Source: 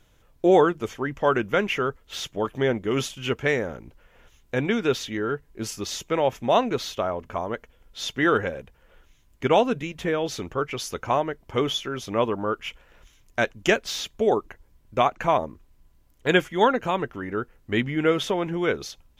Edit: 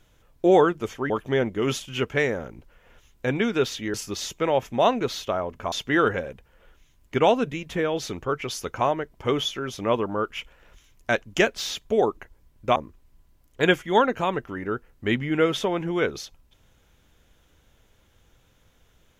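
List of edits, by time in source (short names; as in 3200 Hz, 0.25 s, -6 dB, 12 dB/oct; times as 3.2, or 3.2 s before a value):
1.1–2.39 cut
5.23–5.64 cut
7.42–8.01 cut
15.05–15.42 cut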